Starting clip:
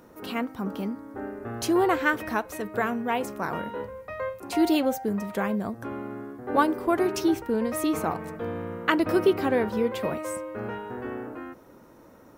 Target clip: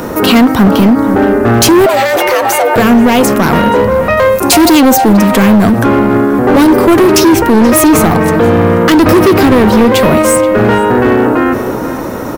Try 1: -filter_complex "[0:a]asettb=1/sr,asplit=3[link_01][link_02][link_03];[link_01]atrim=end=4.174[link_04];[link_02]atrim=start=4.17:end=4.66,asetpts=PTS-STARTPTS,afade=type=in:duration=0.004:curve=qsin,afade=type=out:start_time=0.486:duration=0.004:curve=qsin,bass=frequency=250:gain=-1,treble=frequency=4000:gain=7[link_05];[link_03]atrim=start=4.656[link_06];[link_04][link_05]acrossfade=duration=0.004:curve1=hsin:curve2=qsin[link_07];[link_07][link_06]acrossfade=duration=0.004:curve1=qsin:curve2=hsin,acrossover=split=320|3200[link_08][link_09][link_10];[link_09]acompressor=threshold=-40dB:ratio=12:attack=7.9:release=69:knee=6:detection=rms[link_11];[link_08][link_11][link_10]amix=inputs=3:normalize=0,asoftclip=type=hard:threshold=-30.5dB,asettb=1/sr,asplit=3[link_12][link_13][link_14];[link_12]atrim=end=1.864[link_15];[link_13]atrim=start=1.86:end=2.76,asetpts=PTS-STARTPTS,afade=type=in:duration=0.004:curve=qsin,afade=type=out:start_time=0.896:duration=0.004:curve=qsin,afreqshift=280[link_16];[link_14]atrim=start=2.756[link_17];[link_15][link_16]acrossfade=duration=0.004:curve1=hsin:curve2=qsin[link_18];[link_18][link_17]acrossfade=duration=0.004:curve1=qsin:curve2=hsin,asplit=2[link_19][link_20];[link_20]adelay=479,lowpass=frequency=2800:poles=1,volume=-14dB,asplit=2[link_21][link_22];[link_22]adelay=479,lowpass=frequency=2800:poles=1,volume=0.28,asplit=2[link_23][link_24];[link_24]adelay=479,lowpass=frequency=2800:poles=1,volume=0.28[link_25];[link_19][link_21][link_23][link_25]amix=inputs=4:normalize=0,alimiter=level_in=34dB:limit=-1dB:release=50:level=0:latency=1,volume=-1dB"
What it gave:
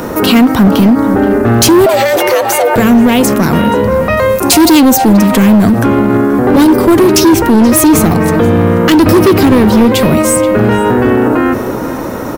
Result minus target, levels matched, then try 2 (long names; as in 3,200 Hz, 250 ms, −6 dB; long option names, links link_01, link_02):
downward compressor: peak gain reduction +7 dB
-filter_complex "[0:a]asettb=1/sr,asplit=3[link_01][link_02][link_03];[link_01]atrim=end=4.174[link_04];[link_02]atrim=start=4.17:end=4.66,asetpts=PTS-STARTPTS,afade=type=in:duration=0.004:curve=qsin,afade=type=out:start_time=0.486:duration=0.004:curve=qsin,bass=frequency=250:gain=-1,treble=frequency=4000:gain=7[link_05];[link_03]atrim=start=4.656[link_06];[link_04][link_05]acrossfade=duration=0.004:curve1=hsin:curve2=qsin[link_07];[link_07][link_06]acrossfade=duration=0.004:curve1=qsin:curve2=hsin,acrossover=split=320|3200[link_08][link_09][link_10];[link_09]acompressor=threshold=-32.5dB:ratio=12:attack=7.9:release=69:knee=6:detection=rms[link_11];[link_08][link_11][link_10]amix=inputs=3:normalize=0,asoftclip=type=hard:threshold=-30.5dB,asettb=1/sr,asplit=3[link_12][link_13][link_14];[link_12]atrim=end=1.864[link_15];[link_13]atrim=start=1.86:end=2.76,asetpts=PTS-STARTPTS,afade=type=in:duration=0.004:curve=qsin,afade=type=out:start_time=0.896:duration=0.004:curve=qsin,afreqshift=280[link_16];[link_14]atrim=start=2.756[link_17];[link_15][link_16]acrossfade=duration=0.004:curve1=hsin:curve2=qsin[link_18];[link_18][link_17]acrossfade=duration=0.004:curve1=qsin:curve2=hsin,asplit=2[link_19][link_20];[link_20]adelay=479,lowpass=frequency=2800:poles=1,volume=-14dB,asplit=2[link_21][link_22];[link_22]adelay=479,lowpass=frequency=2800:poles=1,volume=0.28,asplit=2[link_23][link_24];[link_24]adelay=479,lowpass=frequency=2800:poles=1,volume=0.28[link_25];[link_19][link_21][link_23][link_25]amix=inputs=4:normalize=0,alimiter=level_in=34dB:limit=-1dB:release=50:level=0:latency=1,volume=-1dB"